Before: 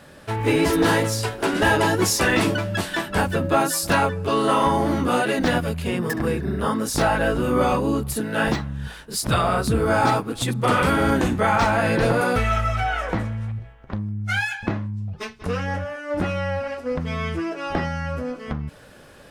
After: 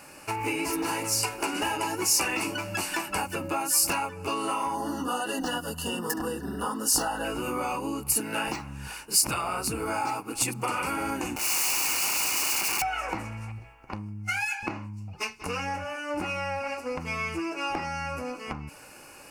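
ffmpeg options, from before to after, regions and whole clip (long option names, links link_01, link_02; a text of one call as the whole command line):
ffmpeg -i in.wav -filter_complex "[0:a]asettb=1/sr,asplit=3[link_01][link_02][link_03];[link_01]atrim=end=4.744[link_04];[link_02]atrim=start=4.74:end=7.25,asetpts=PTS-STARTPTS,afade=type=in:duration=0.004:curve=qsin,afade=type=out:start_time=2.506:duration=0.004:curve=qsin,asuperstop=centerf=2300:order=12:qfactor=2.7,aecho=1:1:4.1:0.44,atrim=end_sample=110691[link_05];[link_03]atrim=start=7.246[link_06];[link_04][link_05]acrossfade=duration=0.004:curve1=hsin:curve2=qsin[link_07];[link_07][link_06]acrossfade=duration=0.004:curve1=qsin:curve2=hsin,asettb=1/sr,asplit=3[link_08][link_09][link_10];[link_08]atrim=end=11.364[link_11];[link_09]atrim=start=11.36:end=12.82,asetpts=PTS-STARTPTS,afade=type=in:duration=0.004:curve=qsin,afade=type=out:start_time=1.456:duration=0.004:curve=qsin,lowpass=frequency=2700:width=0.5412,lowpass=frequency=2700:width=1.3066,equalizer=frequency=1200:width_type=o:width=1.4:gain=-4.5,aeval=exprs='(mod(20*val(0)+1,2)-1)/20':channel_layout=same[link_12];[link_10]atrim=start=12.816[link_13];[link_11][link_12]acrossfade=duration=0.004:curve1=hsin:curve2=qsin[link_14];[link_14][link_13]acrossfade=duration=0.004:curve1=qsin:curve2=hsin,superequalizer=6b=1.78:9b=2.51:10b=1.78:12b=2.82:13b=0.316,acompressor=threshold=-22dB:ratio=6,bass=frequency=250:gain=-5,treble=frequency=4000:gain=13,volume=-5dB" out.wav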